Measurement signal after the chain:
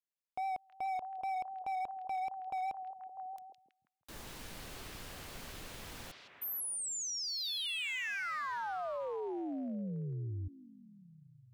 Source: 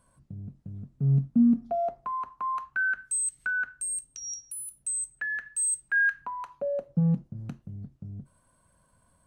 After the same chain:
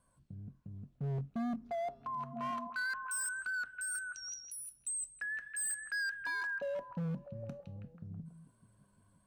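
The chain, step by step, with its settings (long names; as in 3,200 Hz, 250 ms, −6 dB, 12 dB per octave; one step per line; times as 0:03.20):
pitch vibrato 4.9 Hz 37 cents
echo through a band-pass that steps 162 ms, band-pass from 3,500 Hz, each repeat −0.7 octaves, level −1 dB
hard clipping −26.5 dBFS
level −7.5 dB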